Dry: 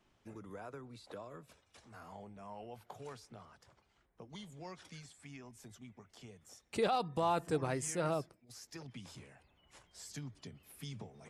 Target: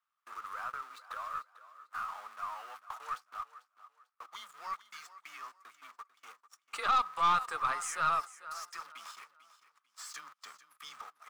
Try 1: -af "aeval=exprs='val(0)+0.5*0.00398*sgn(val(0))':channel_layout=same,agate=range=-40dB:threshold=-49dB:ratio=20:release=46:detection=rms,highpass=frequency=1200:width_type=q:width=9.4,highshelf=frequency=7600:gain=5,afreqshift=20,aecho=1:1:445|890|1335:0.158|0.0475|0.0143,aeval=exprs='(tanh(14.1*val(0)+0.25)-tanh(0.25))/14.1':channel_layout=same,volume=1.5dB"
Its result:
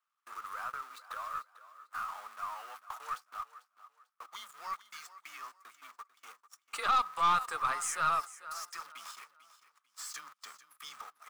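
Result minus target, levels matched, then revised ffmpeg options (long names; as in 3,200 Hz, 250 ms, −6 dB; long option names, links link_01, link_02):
8,000 Hz band +3.5 dB
-af "aeval=exprs='val(0)+0.5*0.00398*sgn(val(0))':channel_layout=same,agate=range=-40dB:threshold=-49dB:ratio=20:release=46:detection=rms,highpass=frequency=1200:width_type=q:width=9.4,highshelf=frequency=7600:gain=-2.5,afreqshift=20,aecho=1:1:445|890|1335:0.158|0.0475|0.0143,aeval=exprs='(tanh(14.1*val(0)+0.25)-tanh(0.25))/14.1':channel_layout=same,volume=1.5dB"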